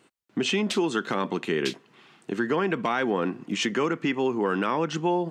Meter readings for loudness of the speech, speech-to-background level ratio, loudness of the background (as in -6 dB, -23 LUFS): -27.0 LUFS, 9.5 dB, -36.5 LUFS